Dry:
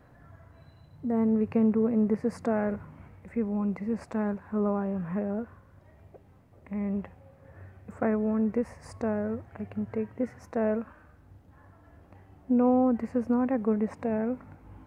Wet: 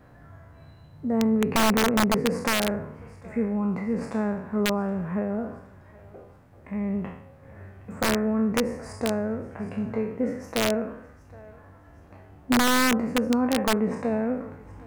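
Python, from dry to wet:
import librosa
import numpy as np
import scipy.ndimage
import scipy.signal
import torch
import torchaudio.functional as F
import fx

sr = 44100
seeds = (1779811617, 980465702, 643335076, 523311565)

y = fx.spec_trails(x, sr, decay_s=0.65)
y = fx.echo_thinned(y, sr, ms=769, feedback_pct=44, hz=870.0, wet_db=-17)
y = (np.mod(10.0 ** (17.0 / 20.0) * y + 1.0, 2.0) - 1.0) / 10.0 ** (17.0 / 20.0)
y = y * librosa.db_to_amplitude(2.5)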